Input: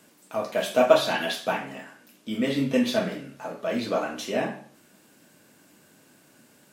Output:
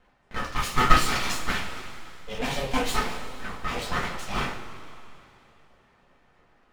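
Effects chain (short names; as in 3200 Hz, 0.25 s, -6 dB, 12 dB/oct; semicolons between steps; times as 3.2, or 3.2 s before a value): low-pass opened by the level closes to 1200 Hz, open at -21.5 dBFS; low shelf 210 Hz -8 dB; full-wave rectifier; two-slope reverb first 0.22 s, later 2.9 s, from -18 dB, DRR -1.5 dB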